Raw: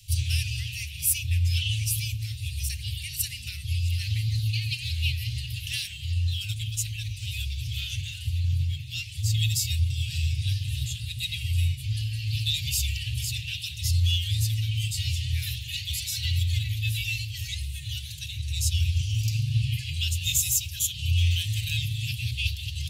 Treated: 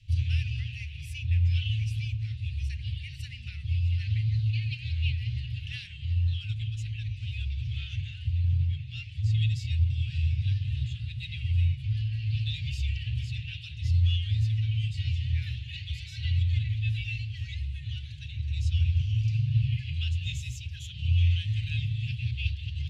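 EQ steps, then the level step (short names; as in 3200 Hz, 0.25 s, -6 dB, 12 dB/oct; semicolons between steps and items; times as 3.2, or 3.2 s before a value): LPF 2000 Hz 12 dB/oct; 0.0 dB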